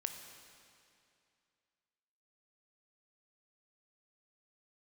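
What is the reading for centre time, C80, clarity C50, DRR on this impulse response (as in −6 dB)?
44 ms, 7.5 dB, 6.5 dB, 5.5 dB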